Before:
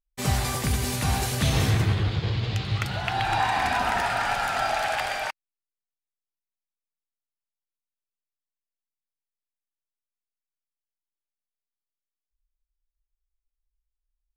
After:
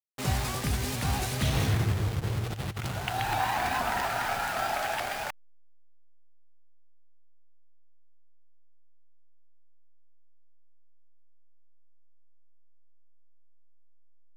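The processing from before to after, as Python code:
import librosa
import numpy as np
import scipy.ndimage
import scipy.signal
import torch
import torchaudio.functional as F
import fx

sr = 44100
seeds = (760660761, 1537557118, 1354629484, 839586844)

y = fx.delta_hold(x, sr, step_db=-29.0)
y = fx.over_compress(y, sr, threshold_db=-29.0, ratio=-0.5, at=(2.45, 2.91))
y = fx.vibrato_shape(y, sr, shape='saw_up', rate_hz=4.2, depth_cents=100.0)
y = y * librosa.db_to_amplitude(-4.0)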